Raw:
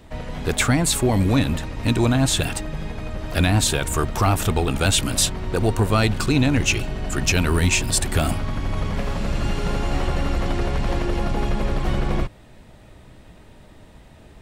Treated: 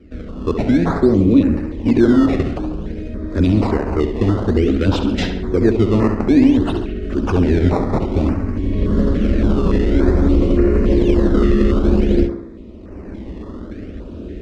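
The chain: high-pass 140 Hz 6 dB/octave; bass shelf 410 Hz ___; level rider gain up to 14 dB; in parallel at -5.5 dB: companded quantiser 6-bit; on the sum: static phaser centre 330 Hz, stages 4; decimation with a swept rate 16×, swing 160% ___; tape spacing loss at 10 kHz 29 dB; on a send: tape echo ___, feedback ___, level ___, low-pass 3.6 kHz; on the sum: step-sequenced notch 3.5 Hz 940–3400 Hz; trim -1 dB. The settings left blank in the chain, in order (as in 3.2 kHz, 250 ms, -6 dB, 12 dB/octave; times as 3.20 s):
+11 dB, 0.54 Hz, 69 ms, 59%, -6 dB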